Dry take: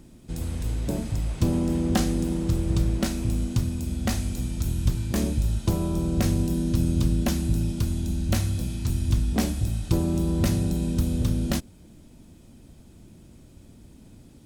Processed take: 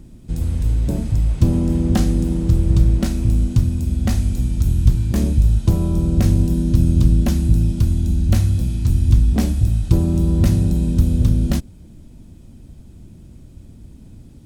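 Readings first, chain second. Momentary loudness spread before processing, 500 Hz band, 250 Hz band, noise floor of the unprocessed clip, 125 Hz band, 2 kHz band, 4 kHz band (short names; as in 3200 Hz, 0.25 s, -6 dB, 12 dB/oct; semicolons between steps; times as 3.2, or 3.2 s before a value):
5 LU, +2.5 dB, +5.5 dB, -51 dBFS, +9.0 dB, 0.0 dB, 0.0 dB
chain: low shelf 210 Hz +11.5 dB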